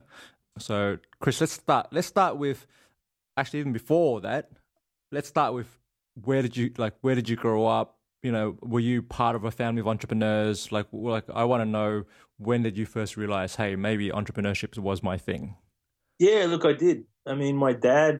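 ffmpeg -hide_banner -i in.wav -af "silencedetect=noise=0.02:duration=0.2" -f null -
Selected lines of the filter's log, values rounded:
silence_start: 0.00
silence_end: 0.57 | silence_duration: 0.57
silence_start: 0.96
silence_end: 1.22 | silence_duration: 0.26
silence_start: 2.55
silence_end: 3.37 | silence_duration: 0.82
silence_start: 4.41
silence_end: 5.13 | silence_duration: 0.72
silence_start: 5.63
silence_end: 6.19 | silence_duration: 0.56
silence_start: 7.84
silence_end: 8.24 | silence_duration: 0.41
silence_start: 12.02
silence_end: 12.41 | silence_duration: 0.39
silence_start: 15.51
silence_end: 16.20 | silence_duration: 0.69
silence_start: 16.99
silence_end: 17.27 | silence_duration: 0.28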